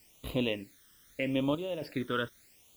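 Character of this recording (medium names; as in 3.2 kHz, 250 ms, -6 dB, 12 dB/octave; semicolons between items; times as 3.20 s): chopped level 1.1 Hz, depth 65%, duty 70%; a quantiser's noise floor 10-bit, dither triangular; phasing stages 12, 0.8 Hz, lowest notch 760–1800 Hz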